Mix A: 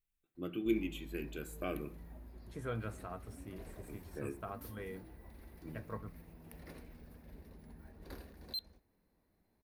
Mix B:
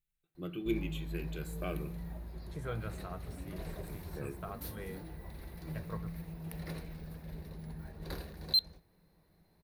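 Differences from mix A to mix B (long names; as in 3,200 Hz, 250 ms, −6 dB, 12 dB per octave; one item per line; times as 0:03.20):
background +7.5 dB
master: add thirty-one-band graphic EQ 160 Hz +10 dB, 250 Hz −10 dB, 4,000 Hz +6 dB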